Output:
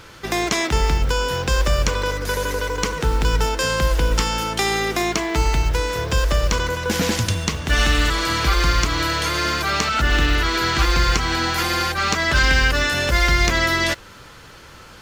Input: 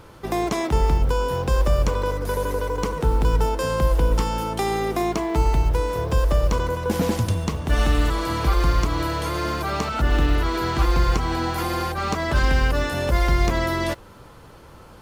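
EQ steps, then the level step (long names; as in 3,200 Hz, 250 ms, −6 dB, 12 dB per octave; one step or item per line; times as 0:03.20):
flat-topped bell 3,200 Hz +10 dB 2.7 octaves
high-shelf EQ 9,200 Hz +6 dB
0.0 dB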